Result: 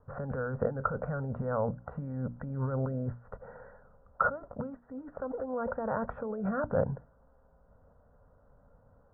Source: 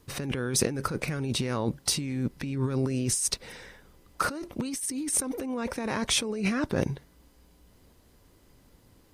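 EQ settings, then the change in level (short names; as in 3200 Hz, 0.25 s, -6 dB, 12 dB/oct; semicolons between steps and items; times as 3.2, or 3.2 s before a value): rippled Chebyshev low-pass 2000 Hz, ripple 9 dB; notches 60/120/180/240/300 Hz; fixed phaser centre 840 Hz, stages 4; +8.0 dB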